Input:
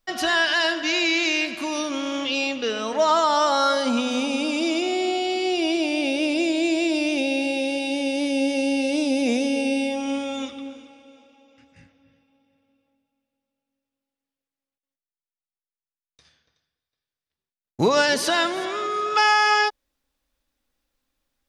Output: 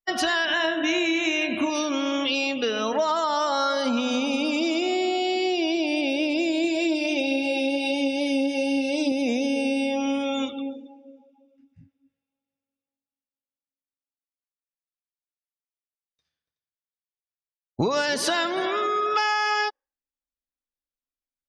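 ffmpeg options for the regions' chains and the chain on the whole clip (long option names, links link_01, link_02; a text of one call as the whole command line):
ffmpeg -i in.wav -filter_complex "[0:a]asettb=1/sr,asplit=3[link_01][link_02][link_03];[link_01]atrim=end=0.454[link_04];[link_02]atrim=start=0.45:end=1.7,asetpts=PTS-STARTPTS,afade=type=in:duration=0.004:curve=qsin,afade=type=out:start_time=1.246:duration=0.004:curve=qsin,asuperstop=centerf=4700:order=4:qfactor=2.9,lowshelf=frequency=490:gain=8,asplit=2[link_05][link_06];[link_06]adelay=31,volume=-7.5dB[link_07];[link_05][link_07]amix=inputs=2:normalize=0,atrim=end_sample=55125[link_08];[link_03]atrim=start=1.696[link_09];[link_04][link_08]acrossfade=duration=0.004:curve1=hsin:curve2=qsin[link_10];[link_10][link_09]acrossfade=duration=0.004:curve1=qsin:curve2=hsin,asettb=1/sr,asplit=3[link_11][link_12][link_13];[link_11]atrim=end=6.644[link_14];[link_12]atrim=start=6.64:end=9.12,asetpts=PTS-STARTPTS,afade=type=in:duration=0.004:curve=qsin,afade=type=out:start_time=2.476:duration=0.004:curve=qsin,bandreject=frequency=59.94:width_type=h:width=4,bandreject=frequency=119.88:width_type=h:width=4,bandreject=frequency=179.82:width_type=h:width=4,bandreject=frequency=239.76:width_type=h:width=4,bandreject=frequency=299.7:width_type=h:width=4,bandreject=frequency=359.64:width_type=h:width=4,bandreject=frequency=419.58:width_type=h:width=4,bandreject=frequency=479.52:width_type=h:width=4,aphaser=in_gain=1:out_gain=1:delay=4:decay=0.35:speed=1.4:type=triangular[link_15];[link_13]atrim=start=9.116[link_16];[link_14][link_15]acrossfade=duration=0.004:curve1=hsin:curve2=qsin[link_17];[link_17][link_16]acrossfade=duration=0.004:curve1=qsin:curve2=hsin,afftdn=noise_reduction=27:noise_floor=-40,acompressor=threshold=-25dB:ratio=6,volume=4dB" out.wav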